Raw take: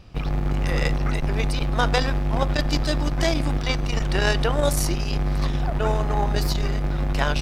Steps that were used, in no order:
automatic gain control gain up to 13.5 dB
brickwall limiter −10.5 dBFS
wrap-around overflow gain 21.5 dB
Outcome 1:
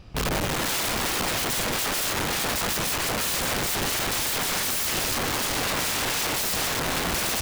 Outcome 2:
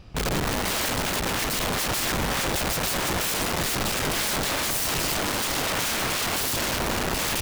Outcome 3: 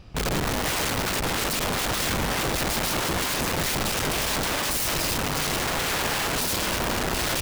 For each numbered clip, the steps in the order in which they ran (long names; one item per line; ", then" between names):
brickwall limiter, then automatic gain control, then wrap-around overflow
automatic gain control, then wrap-around overflow, then brickwall limiter
automatic gain control, then brickwall limiter, then wrap-around overflow